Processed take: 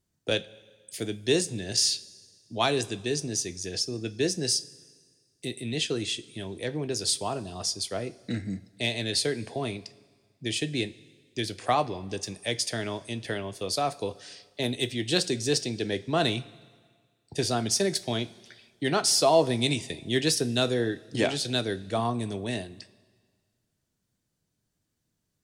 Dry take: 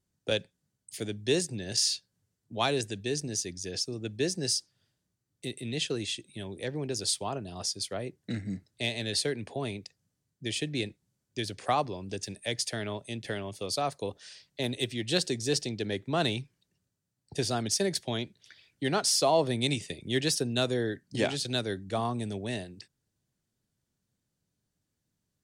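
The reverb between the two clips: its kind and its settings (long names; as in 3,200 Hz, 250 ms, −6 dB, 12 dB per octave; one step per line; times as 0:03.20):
coupled-rooms reverb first 0.21 s, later 1.7 s, from −18 dB, DRR 10.5 dB
level +2.5 dB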